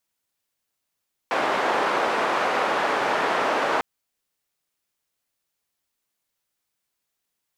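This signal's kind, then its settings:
band-limited noise 430–1,100 Hz, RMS −23 dBFS 2.50 s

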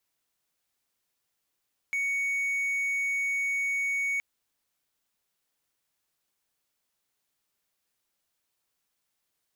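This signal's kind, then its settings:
tone triangle 2,230 Hz −24 dBFS 2.27 s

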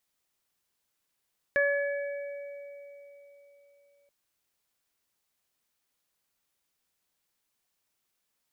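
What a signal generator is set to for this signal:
harmonic partials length 2.53 s, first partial 568 Hz, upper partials −18/1/−13.5 dB, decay 3.74 s, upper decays 0.72/1.57/3.69 s, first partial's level −24 dB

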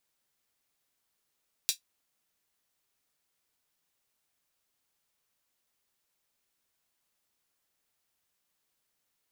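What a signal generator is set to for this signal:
closed synth hi-hat, high-pass 3,800 Hz, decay 0.12 s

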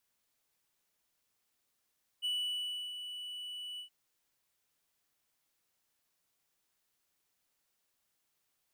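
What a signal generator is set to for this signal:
note with an ADSR envelope triangle 2,960 Hz, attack 30 ms, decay 676 ms, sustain −9.5 dB, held 1.57 s, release 101 ms −29 dBFS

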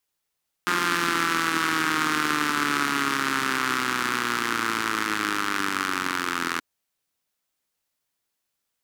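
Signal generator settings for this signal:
pulse-train model of a four-cylinder engine, changing speed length 5.93 s, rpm 5,300, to 2,500, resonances 300/1,300 Hz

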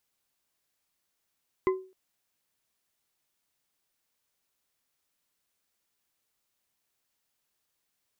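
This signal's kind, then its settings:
struck glass bar, length 0.26 s, lowest mode 376 Hz, modes 3, decay 0.37 s, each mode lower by 6.5 dB, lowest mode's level −19 dB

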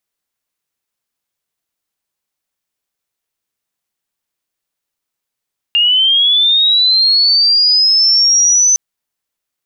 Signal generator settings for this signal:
glide linear 2,800 Hz → 6,100 Hz −8 dBFS → −7 dBFS 3.01 s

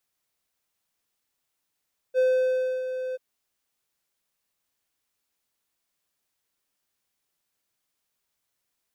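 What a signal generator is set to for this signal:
note with an ADSR envelope triangle 513 Hz, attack 44 ms, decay 642 ms, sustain −10.5 dB, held 1.01 s, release 25 ms −15.5 dBFS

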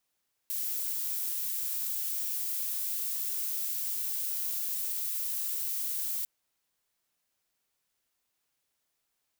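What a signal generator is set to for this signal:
noise violet, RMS −33 dBFS 5.75 s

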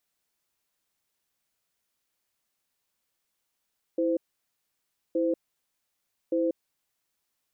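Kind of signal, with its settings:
tone pair in a cadence 329 Hz, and 515 Hz, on 0.19 s, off 0.98 s, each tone −25.5 dBFS 3.25 s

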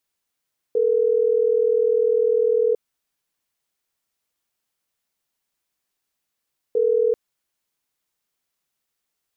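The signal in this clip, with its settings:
call progress tone ringback tone, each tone −18.5 dBFS 6.39 s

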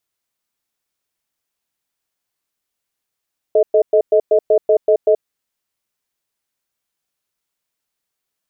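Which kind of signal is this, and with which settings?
tone pair in a cadence 434 Hz, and 628 Hz, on 0.08 s, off 0.11 s, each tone −11.5 dBFS 1.71 s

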